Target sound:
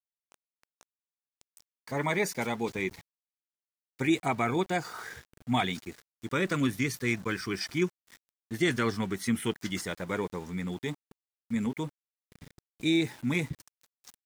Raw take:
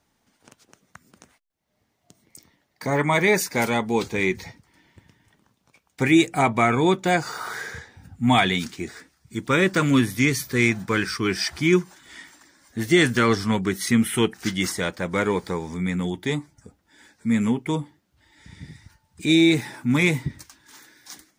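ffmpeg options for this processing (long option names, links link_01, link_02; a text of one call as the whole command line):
ffmpeg -i in.wav -af "atempo=1.5,aeval=exprs='val(0)*gte(abs(val(0)),0.0119)':channel_layout=same,volume=-8.5dB" out.wav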